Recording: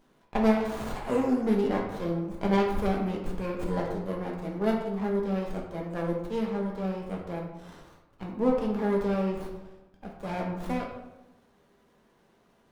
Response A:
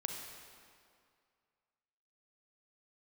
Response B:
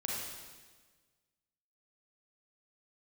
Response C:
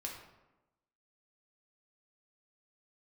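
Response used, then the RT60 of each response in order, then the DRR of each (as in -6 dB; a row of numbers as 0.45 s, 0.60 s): C; 2.2 s, 1.4 s, 1.0 s; 2.0 dB, -4.0 dB, -1.5 dB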